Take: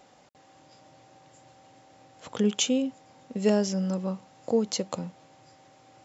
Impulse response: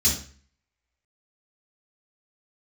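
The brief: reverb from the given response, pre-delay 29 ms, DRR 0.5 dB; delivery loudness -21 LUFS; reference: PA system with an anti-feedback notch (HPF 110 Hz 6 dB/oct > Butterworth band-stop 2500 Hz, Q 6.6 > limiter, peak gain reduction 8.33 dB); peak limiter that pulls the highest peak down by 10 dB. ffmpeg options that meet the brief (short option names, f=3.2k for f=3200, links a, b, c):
-filter_complex "[0:a]alimiter=limit=-21.5dB:level=0:latency=1,asplit=2[a][b];[1:a]atrim=start_sample=2205,adelay=29[c];[b][c]afir=irnorm=-1:irlink=0,volume=-11.5dB[d];[a][d]amix=inputs=2:normalize=0,highpass=f=110:p=1,asuperstop=centerf=2500:order=8:qfactor=6.6,volume=7.5dB,alimiter=limit=-12dB:level=0:latency=1"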